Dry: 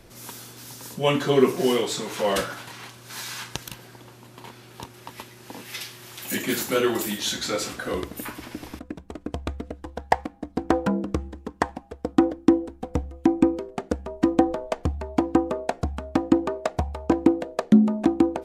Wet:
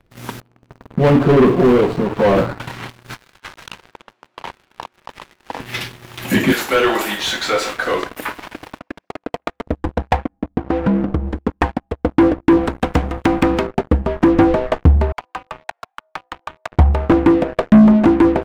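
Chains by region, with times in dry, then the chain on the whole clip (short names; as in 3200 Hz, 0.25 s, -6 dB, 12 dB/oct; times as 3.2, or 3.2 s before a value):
0.4–2.6 median filter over 25 samples + low shelf 90 Hz -4.5 dB
3.14–5.6 BPF 560–7500 Hz + negative-ratio compressor -41 dBFS, ratio -0.5
6.52–9.67 HPF 550 Hz + delay with a stepping band-pass 0.133 s, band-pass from 790 Hz, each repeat 1.4 oct, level -9.5 dB
10.17–11.28 high shelf 2400 Hz -11 dB + compressor 2:1, threshold -35 dBFS
12.57–13.67 low shelf 130 Hz -8.5 dB + spectral compressor 2:1
15.12–16.72 HPF 820 Hz 24 dB/oct + compressor 2:1, threshold -41 dBFS
whole clip: sample leveller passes 5; tone controls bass +6 dB, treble -13 dB; gain -4.5 dB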